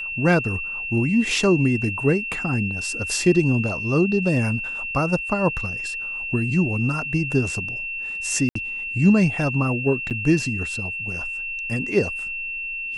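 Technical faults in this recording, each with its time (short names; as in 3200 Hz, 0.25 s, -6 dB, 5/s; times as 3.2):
tone 2700 Hz -27 dBFS
8.49–8.55 gap 64 ms
10.1–10.11 gap 8.3 ms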